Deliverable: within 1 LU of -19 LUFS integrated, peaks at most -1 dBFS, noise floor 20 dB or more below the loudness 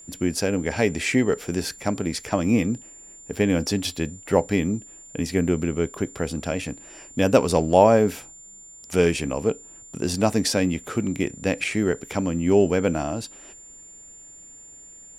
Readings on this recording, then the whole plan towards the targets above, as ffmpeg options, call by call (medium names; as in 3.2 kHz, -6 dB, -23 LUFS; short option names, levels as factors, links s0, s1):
steady tone 7.2 kHz; tone level -43 dBFS; loudness -23.5 LUFS; peak level -1.5 dBFS; loudness target -19.0 LUFS
-> -af "bandreject=f=7200:w=30"
-af "volume=1.68,alimiter=limit=0.891:level=0:latency=1"